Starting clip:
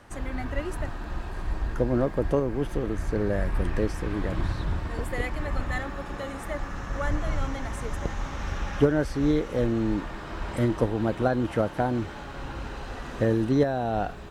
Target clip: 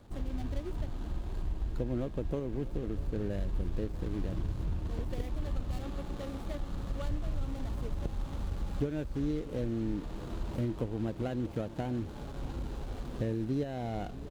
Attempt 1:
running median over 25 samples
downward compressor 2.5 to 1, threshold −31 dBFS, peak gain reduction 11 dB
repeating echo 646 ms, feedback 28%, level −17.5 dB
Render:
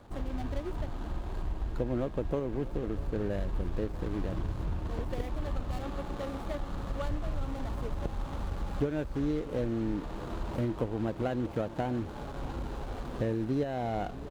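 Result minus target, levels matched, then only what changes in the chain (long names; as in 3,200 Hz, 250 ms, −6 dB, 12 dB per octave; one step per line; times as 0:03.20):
1,000 Hz band +4.5 dB
add after downward compressor: parametric band 1,000 Hz −7 dB 2.5 octaves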